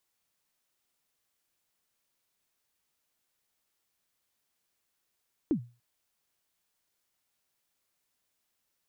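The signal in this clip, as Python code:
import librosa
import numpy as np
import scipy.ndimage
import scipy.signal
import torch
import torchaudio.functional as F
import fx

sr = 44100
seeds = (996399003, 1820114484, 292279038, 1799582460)

y = fx.drum_kick(sr, seeds[0], length_s=0.29, level_db=-20, start_hz=350.0, end_hz=120.0, sweep_ms=88.0, decay_s=0.32, click=False)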